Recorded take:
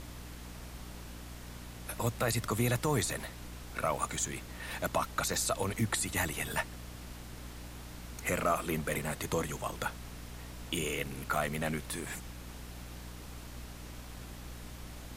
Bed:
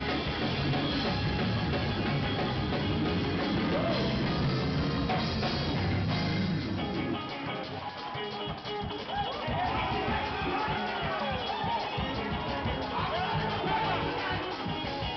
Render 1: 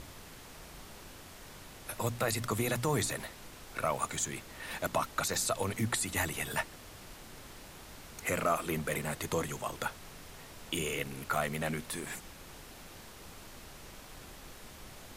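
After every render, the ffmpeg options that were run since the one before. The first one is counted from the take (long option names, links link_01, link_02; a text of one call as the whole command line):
ffmpeg -i in.wav -af "bandreject=frequency=60:width_type=h:width=6,bandreject=frequency=120:width_type=h:width=6,bandreject=frequency=180:width_type=h:width=6,bandreject=frequency=240:width_type=h:width=6,bandreject=frequency=300:width_type=h:width=6" out.wav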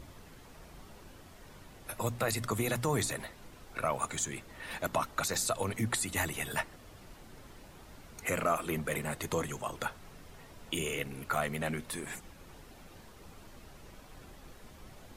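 ffmpeg -i in.wav -af "afftdn=noise_reduction=8:noise_floor=-51" out.wav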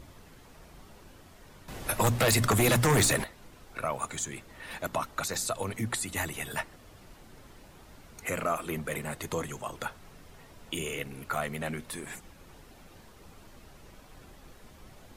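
ffmpeg -i in.wav -filter_complex "[0:a]asettb=1/sr,asplit=3[link_01][link_02][link_03];[link_01]atrim=end=1.684[link_04];[link_02]atrim=start=1.68:end=3.24,asetpts=PTS-STARTPTS,afade=type=in:duration=0.004:curve=qsin,afade=type=out:start_time=1.556:duration=0.004:curve=qsin,aeval=exprs='0.119*sin(PI/2*2.51*val(0)/0.119)':channel_layout=same[link_05];[link_03]atrim=start=3.236[link_06];[link_04][link_05]acrossfade=duration=0.004:curve1=hsin:curve2=qsin[link_07];[link_07][link_06]acrossfade=duration=0.004:curve1=qsin:curve2=hsin" out.wav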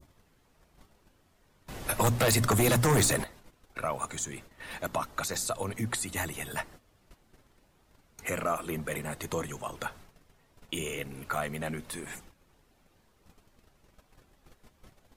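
ffmpeg -i in.wav -af "agate=range=-13dB:threshold=-48dB:ratio=16:detection=peak,adynamicequalizer=threshold=0.00708:dfrequency=2500:dqfactor=0.89:tfrequency=2500:tqfactor=0.89:attack=5:release=100:ratio=0.375:range=2:mode=cutabove:tftype=bell" out.wav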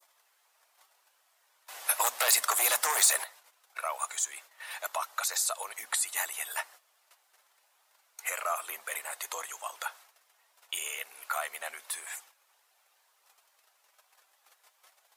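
ffmpeg -i in.wav -af "highpass=frequency=710:width=0.5412,highpass=frequency=710:width=1.3066,highshelf=frequency=6200:gain=7" out.wav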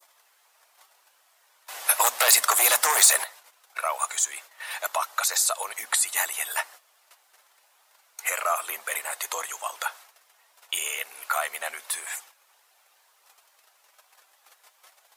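ffmpeg -i in.wav -af "volume=6.5dB" out.wav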